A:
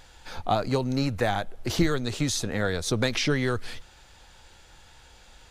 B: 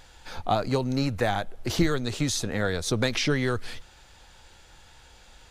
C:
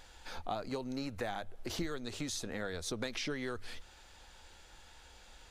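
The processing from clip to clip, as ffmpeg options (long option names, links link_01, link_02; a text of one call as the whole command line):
ffmpeg -i in.wav -af anull out.wav
ffmpeg -i in.wav -af "equalizer=frequency=130:width=2.5:gain=-9,bandreject=frequency=50:width_type=h:width=6,bandreject=frequency=100:width_type=h:width=6,acompressor=threshold=-37dB:ratio=2,volume=-4dB" out.wav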